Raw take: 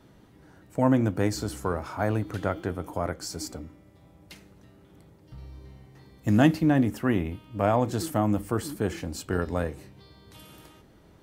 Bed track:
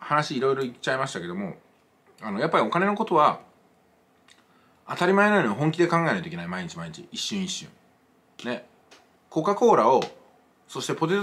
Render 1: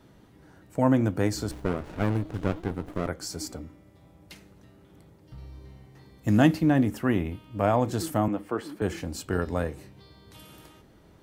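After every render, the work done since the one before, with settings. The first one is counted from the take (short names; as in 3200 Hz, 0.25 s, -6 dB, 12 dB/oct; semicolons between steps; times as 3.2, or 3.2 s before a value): 1.51–3.07 running maximum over 33 samples; 8.28–8.82 three-band isolator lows -16 dB, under 230 Hz, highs -15 dB, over 3800 Hz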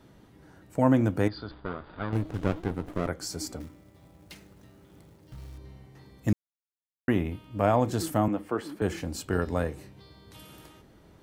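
1.28–2.13 rippled Chebyshev low-pass 4900 Hz, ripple 9 dB; 3.6–5.58 short-mantissa float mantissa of 2-bit; 6.33–7.08 mute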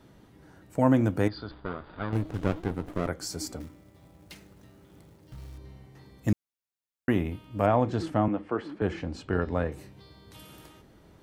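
7.66–9.72 LPF 3400 Hz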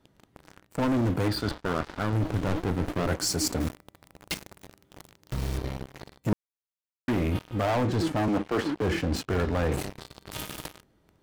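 sample leveller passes 5; reverse; compressor, threshold -25 dBFS, peak gain reduction 13 dB; reverse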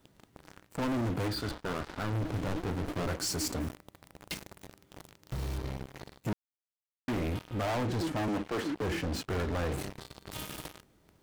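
bit-crush 12-bit; soft clip -29 dBFS, distortion -12 dB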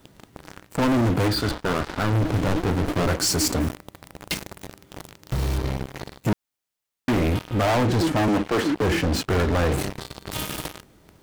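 gain +11 dB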